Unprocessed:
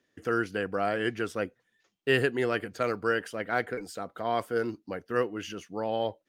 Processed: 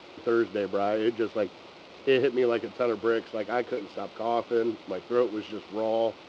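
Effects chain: added noise white -41 dBFS; backlash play -32.5 dBFS; speaker cabinet 110–4400 Hz, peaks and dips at 130 Hz -7 dB, 350 Hz +7 dB, 550 Hz +5 dB, 1700 Hz -10 dB

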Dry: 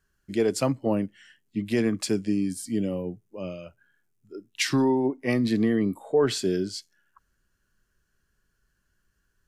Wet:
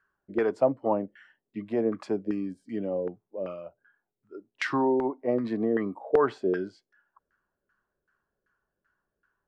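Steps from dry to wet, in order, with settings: RIAA curve recording; LFO low-pass saw down 2.6 Hz 470–1500 Hz

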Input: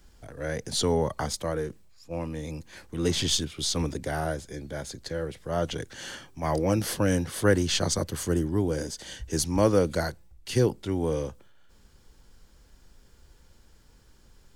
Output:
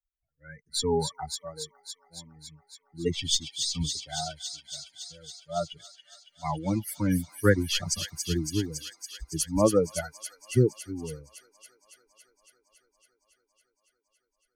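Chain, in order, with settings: per-bin expansion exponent 3; thin delay 0.279 s, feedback 80%, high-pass 3000 Hz, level -5 dB; mismatched tape noise reduction decoder only; gain +4.5 dB

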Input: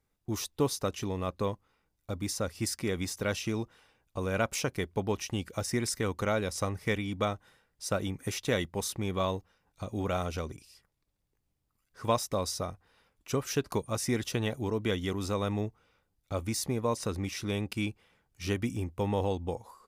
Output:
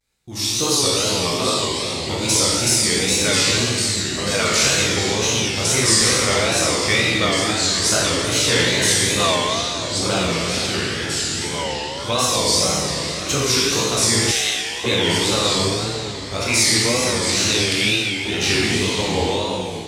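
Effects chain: 16.42–17.09 bell 1900 Hz +15 dB 0.53 oct; reverb RT60 2.1 s, pre-delay 17 ms, DRR -7.5 dB; wow and flutter 130 cents; in parallel at -1.5 dB: compressor, threshold -34 dBFS, peak gain reduction 15.5 dB; 14.31–14.84 on the sum: HPF 1500 Hz 12 dB/oct; AGC gain up to 11.5 dB; echoes that change speed 0.605 s, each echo -3 st, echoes 3, each echo -6 dB; graphic EQ 2000/4000/8000 Hz +6/+11/+11 dB; gain -9 dB

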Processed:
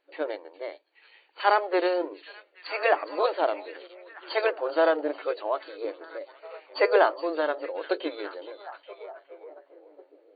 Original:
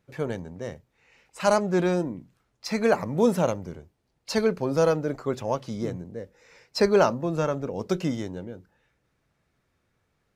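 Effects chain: FFT band-pass 290–4600 Hz; delay with a stepping band-pass 0.415 s, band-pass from 3600 Hz, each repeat -0.7 oct, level -9 dB; formant shift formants +2 st

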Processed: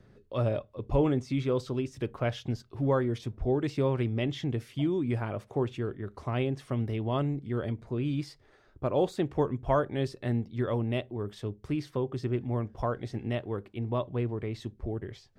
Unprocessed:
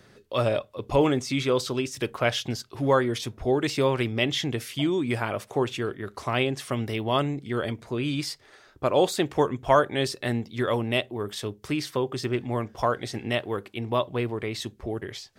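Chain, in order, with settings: tilt -3 dB/oct; gain -8.5 dB

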